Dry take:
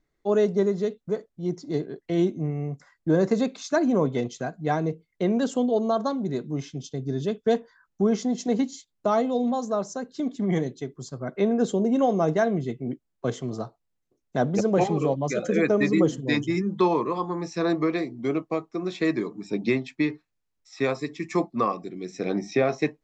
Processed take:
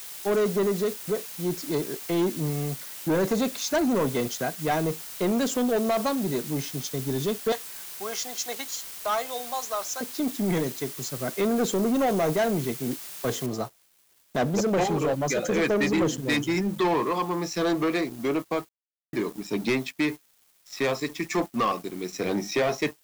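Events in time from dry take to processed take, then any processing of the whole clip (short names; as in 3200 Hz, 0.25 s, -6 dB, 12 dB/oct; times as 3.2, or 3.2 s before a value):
7.52–10.01 HPF 970 Hz
13.46 noise floor step -48 dB -60 dB
18.69–19.13 mute
whole clip: tilt +1.5 dB/oct; sample leveller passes 3; gain -7 dB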